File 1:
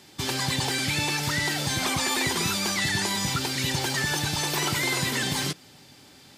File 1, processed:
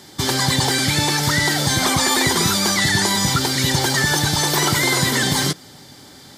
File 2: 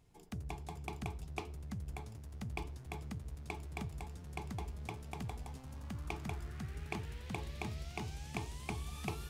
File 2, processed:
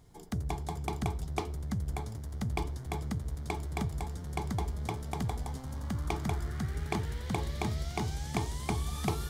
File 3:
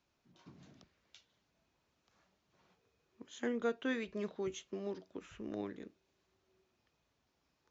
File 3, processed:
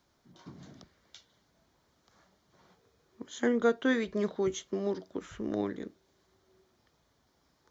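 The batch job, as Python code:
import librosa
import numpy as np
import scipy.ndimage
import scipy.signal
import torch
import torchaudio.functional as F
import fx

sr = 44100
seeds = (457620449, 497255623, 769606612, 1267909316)

y = fx.peak_eq(x, sr, hz=2600.0, db=-13.0, octaves=0.24)
y = y * 10.0 ** (9.0 / 20.0)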